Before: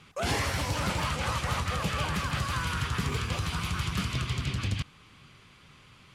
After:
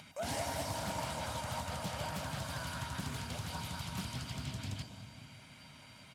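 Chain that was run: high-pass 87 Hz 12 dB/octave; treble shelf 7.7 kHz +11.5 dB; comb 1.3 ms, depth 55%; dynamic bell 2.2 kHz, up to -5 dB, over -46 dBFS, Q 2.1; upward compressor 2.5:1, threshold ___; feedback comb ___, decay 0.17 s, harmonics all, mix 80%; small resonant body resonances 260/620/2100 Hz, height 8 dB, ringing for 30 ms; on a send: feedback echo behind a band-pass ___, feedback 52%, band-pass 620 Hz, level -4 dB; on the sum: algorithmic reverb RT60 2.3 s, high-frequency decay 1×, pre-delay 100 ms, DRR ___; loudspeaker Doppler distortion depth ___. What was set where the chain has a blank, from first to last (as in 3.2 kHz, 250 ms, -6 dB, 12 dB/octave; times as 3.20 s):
-35 dBFS, 940 Hz, 192 ms, 8 dB, 0.35 ms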